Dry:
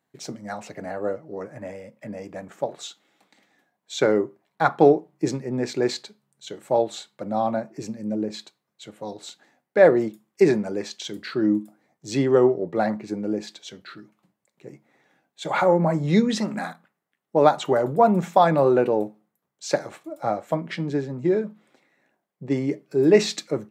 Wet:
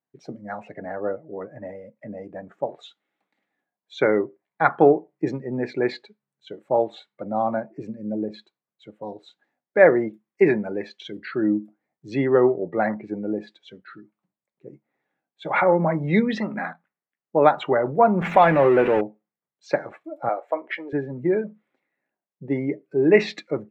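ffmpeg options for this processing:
ffmpeg -i in.wav -filter_complex "[0:a]asettb=1/sr,asplit=3[link_01][link_02][link_03];[link_01]atrim=end=18.214[link_04];[link_02]atrim=start=18.21:end=19.01,asetpts=PTS-STARTPTS,afade=type=in:duration=0.004:curve=qsin,afade=type=out:start_time=0.796:duration=0.004:curve=qsin,aeval=exprs='val(0)+0.5*0.0631*sgn(val(0))':channel_layout=same[link_05];[link_03]atrim=start=19.006[link_06];[link_04][link_05]acrossfade=duration=0.004:curve1=hsin:curve2=qsin[link_07];[link_07][link_06]acrossfade=duration=0.004:curve1=qsin:curve2=hsin,asettb=1/sr,asplit=3[link_08][link_09][link_10];[link_08]atrim=end=20.294[link_11];[link_09]atrim=start=20.29:end=20.93,asetpts=PTS-STARTPTS,afade=type=in:duration=0.004:curve=qsin,afade=type=out:start_time=0.636:duration=0.004:curve=qsin,highpass=frequency=360:width=0.5412,highpass=frequency=360:width=1.3066[link_12];[link_10]atrim=start=20.926[link_13];[link_11][link_12]acrossfade=duration=0.004:curve1=hsin:curve2=qsin[link_14];[link_14][link_13]acrossfade=duration=0.004:curve1=qsin:curve2=hsin,bass=frequency=250:gain=-2,treble=frequency=4000:gain=-14,afftdn=noise_reduction=14:noise_floor=-42,adynamicequalizer=threshold=0.00708:dfrequency=2100:dqfactor=1.5:tfrequency=2100:tqfactor=1.5:attack=5:release=100:ratio=0.375:range=4:mode=boostabove:tftype=bell" out.wav

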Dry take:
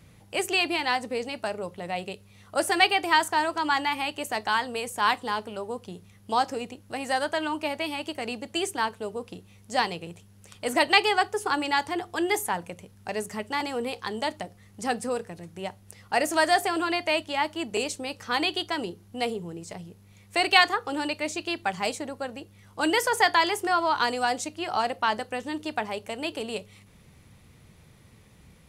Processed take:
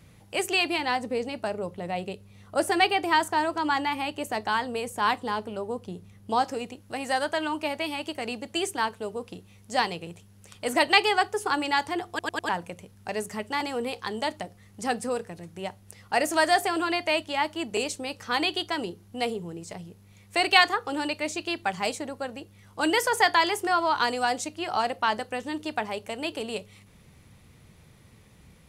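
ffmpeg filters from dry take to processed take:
ffmpeg -i in.wav -filter_complex "[0:a]asettb=1/sr,asplit=3[link_01][link_02][link_03];[link_01]atrim=end=0.784[link_04];[link_02]atrim=start=0.78:end=6.43,asetpts=PTS-STARTPTS,afade=type=in:duration=0.004:curve=qsin,afade=type=out:start_time=5.646:duration=0.004:curve=qsin,tiltshelf=frequency=780:gain=3.5[link_05];[link_03]atrim=start=6.426[link_06];[link_04][link_05]acrossfade=duration=0.004:curve1=hsin:curve2=qsin[link_07];[link_07][link_06]acrossfade=duration=0.004:curve1=qsin:curve2=hsin,asplit=5[link_08][link_09][link_10][link_11][link_12];[link_08]atrim=end=12.192[link_13];[link_09]atrim=start=12.088:end=12.192[link_14];[link_10]atrim=start=12.088:end=12.192[link_15];[link_11]atrim=start=12.088:end=12.192[link_16];[link_12]atrim=start=12.488[link_17];[link_13][link_14]acrossfade=duration=0.004:curve1=hsin:curve2=hsin[link_18];[link_18][link_15]acrossfade=duration=0.004:curve1=hsin:curve2=hsin[link_19];[link_19][link_16]acrossfade=duration=0.004:curve1=hsin:curve2=hsin[link_20];[link_20][link_17]acrossfade=duration=0.004:curve1=hsin:curve2=hsin" out.wav

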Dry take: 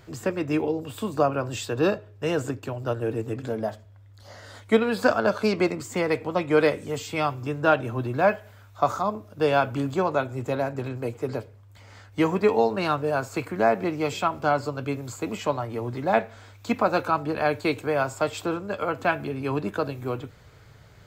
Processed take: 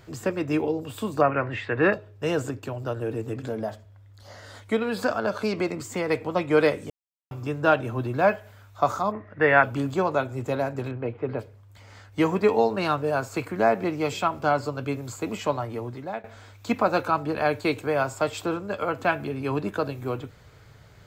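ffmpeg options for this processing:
ffmpeg -i in.wav -filter_complex "[0:a]asettb=1/sr,asplit=3[link_01][link_02][link_03];[link_01]atrim=end=1.214[link_04];[link_02]atrim=start=1.21:end=1.93,asetpts=PTS-STARTPTS,afade=type=in:duration=0.004:curve=qsin,afade=type=out:start_time=0.716:duration=0.004:curve=qsin,lowpass=frequency=2000:width_type=q:width=8.4[link_05];[link_03]atrim=start=1.926[link_06];[link_04][link_05]acrossfade=duration=0.004:curve1=hsin:curve2=qsin[link_07];[link_07][link_06]acrossfade=duration=0.004:curve1=qsin:curve2=hsin,asettb=1/sr,asplit=3[link_08][link_09][link_10];[link_08]atrim=end=2.464[link_11];[link_09]atrim=start=2.46:end=6.1,asetpts=PTS-STARTPTS,afade=type=in:duration=0.004:curve=qsin,afade=type=out:start_time=3.636:duration=0.004:curve=qsin,acompressor=threshold=-27dB:ratio=1.5:attack=3.2:release=140:knee=1:detection=peak[link_12];[link_10]atrim=start=6.096[link_13];[link_11][link_12]acrossfade=duration=0.004:curve1=hsin:curve2=qsin[link_14];[link_14][link_13]acrossfade=duration=0.004:curve1=qsin:curve2=hsin,asplit=3[link_15][link_16][link_17];[link_15]afade=type=out:start_time=9.11:duration=0.02[link_18];[link_16]lowpass=frequency=1900:width_type=q:width=14,afade=type=in:start_time=9.11:duration=0.02,afade=type=out:start_time=9.62:duration=0.02[link_19];[link_17]afade=type=in:start_time=9.62:duration=0.02[link_20];[link_18][link_19][link_20]amix=inputs=3:normalize=0,asettb=1/sr,asplit=3[link_21][link_22][link_23];[link_21]atrim=end=10.914[link_24];[link_22]atrim=start=10.91:end=11.39,asetpts=PTS-STARTPTS,afade=type=in:duration=0.004:curve=qsin,afade=type=out:start_time=0.476:duration=0.004:curve=qsin,lowpass=frequency=3000:width=0.5412,lowpass=frequency=3000:width=1.3066[link_25];[link_23]atrim=start=11.386[link_26];[link_24][link_25]acrossfade=duration=0.004:curve1=hsin:curve2=qsin[link_27];[link_27][link_26]acrossfade=duration=0.004:curve1=qsin:curve2=hsin,asplit=4[link_28][link_29][link_30][link_31];[link_28]atrim=end=6.9,asetpts=PTS-STARTPTS,afade=type=out:start_time=6.896:duration=0.004:curve=hsin[link_32];[link_29]atrim=start=6.9:end=7.31,asetpts=PTS-STARTPTS,volume=0[link_33];[link_30]atrim=start=7.31:end=16.24,asetpts=PTS-STARTPTS,afade=type=in:duration=0.004:curve=hsin,afade=type=out:start_time=8.36:duration=0.57:silence=0.105925[link_34];[link_31]atrim=start=16.24,asetpts=PTS-STARTPTS,afade=type=in:duration=0.004:curve=hsin:silence=0.105925[link_35];[link_32][link_33][link_34][link_35]concat=n=4:v=0:a=1" out.wav

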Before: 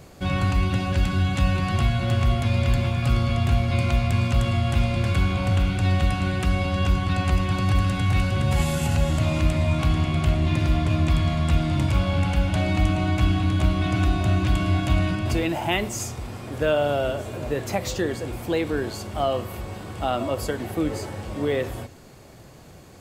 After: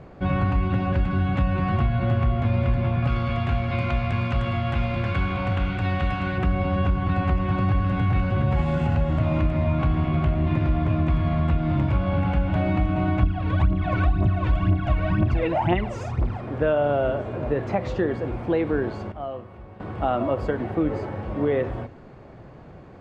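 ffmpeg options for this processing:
ffmpeg -i in.wav -filter_complex "[0:a]asettb=1/sr,asplit=3[link_01][link_02][link_03];[link_01]atrim=end=3.074[link_04];[link_02]atrim=start=3.07:end=6.38,asetpts=PTS-STARTPTS,afade=type=in:duration=0.004:curve=qsin,afade=type=out:start_time=3.306:duration=0.004:curve=qsin,tiltshelf=frequency=1100:gain=-5[link_05];[link_03]atrim=start=6.376[link_06];[link_04][link_05]acrossfade=duration=0.004:curve1=hsin:curve2=qsin[link_07];[link_07][link_06]acrossfade=duration=0.004:curve1=qsin:curve2=hsin,asettb=1/sr,asplit=3[link_08][link_09][link_10];[link_08]atrim=end=13.234[link_11];[link_09]atrim=start=13.23:end=16.41,asetpts=PTS-STARTPTS,afade=type=in:duration=0.004:curve=qsin,afade=type=out:start_time=3.176:duration=0.004:curve=qsin,aphaser=in_gain=1:out_gain=1:delay=2.3:decay=0.71:speed=2:type=triangular[link_12];[link_10]atrim=start=16.406[link_13];[link_11][link_12]acrossfade=duration=0.004:curve1=hsin:curve2=qsin[link_14];[link_14][link_13]acrossfade=duration=0.004:curve1=qsin:curve2=hsin,asplit=3[link_15][link_16][link_17];[link_15]atrim=end=19.122[link_18];[link_16]atrim=start=19.118:end=19.802,asetpts=PTS-STARTPTS,volume=-11.5dB[link_19];[link_17]atrim=start=19.798[link_20];[link_18][link_19]acrossfade=duration=0.004:curve1=hsin:curve2=hsin[link_21];[link_21][link_20]acrossfade=duration=0.004:curve1=hsin:curve2=hsin,lowpass=1700,equalizer=frequency=88:width_type=o:width=0.22:gain=-4.5,acompressor=threshold=-20dB:ratio=6,volume=3dB" out.wav

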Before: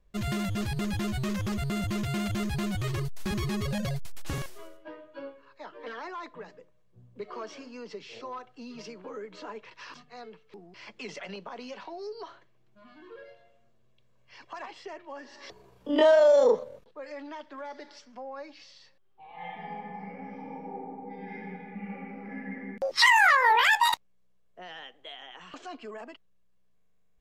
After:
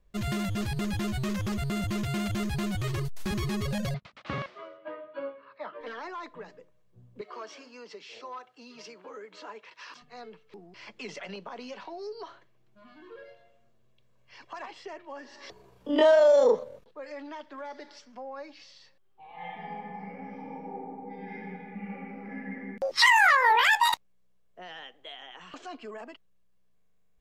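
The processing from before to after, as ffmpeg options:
ffmpeg -i in.wav -filter_complex "[0:a]asettb=1/sr,asplit=3[link_01][link_02][link_03];[link_01]atrim=end=3.944[link_04];[link_02]atrim=start=3.94:end=5.81,asetpts=PTS-STARTPTS,afade=type=in:duration=0.004:curve=qsin,afade=type=out:start_time=1.866:duration=0.004:curve=qsin,highpass=130,equalizer=frequency=210:width_type=q:width=4:gain=5,equalizer=frequency=360:width_type=q:width=4:gain=-4,equalizer=frequency=590:width_type=q:width=4:gain=7,equalizer=frequency=1200:width_type=q:width=4:gain=9,equalizer=frequency=2100:width_type=q:width=4:gain=5,lowpass=frequency=4100:width=0.5412,lowpass=frequency=4100:width=1.3066[link_05];[link_03]atrim=start=5.806[link_06];[link_04][link_05]acrossfade=duration=0.004:curve1=hsin:curve2=qsin[link_07];[link_07][link_06]acrossfade=duration=0.004:curve1=qsin:curve2=hsin,asettb=1/sr,asplit=3[link_08][link_09][link_10];[link_08]atrim=end=7.214[link_11];[link_09]atrim=start=7.21:end=10.02,asetpts=PTS-STARTPTS,afade=type=in:duration=0.004:curve=qsin,afade=type=out:start_time=2.806:duration=0.004:curve=qsin,highpass=frequency=580:poles=1[link_12];[link_10]atrim=start=10.016[link_13];[link_11][link_12]acrossfade=duration=0.004:curve1=hsin:curve2=qsin[link_14];[link_14][link_13]acrossfade=duration=0.004:curve1=qsin:curve2=hsin" out.wav

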